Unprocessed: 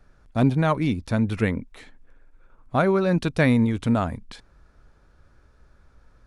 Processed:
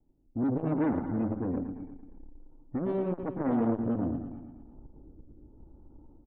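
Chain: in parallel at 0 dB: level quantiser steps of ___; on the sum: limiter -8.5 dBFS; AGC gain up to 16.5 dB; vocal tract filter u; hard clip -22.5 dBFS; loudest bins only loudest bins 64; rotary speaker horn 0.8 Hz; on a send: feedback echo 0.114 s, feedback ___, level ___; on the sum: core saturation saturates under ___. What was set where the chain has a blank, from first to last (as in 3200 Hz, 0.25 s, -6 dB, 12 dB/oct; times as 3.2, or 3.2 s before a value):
17 dB, 57%, -8 dB, 390 Hz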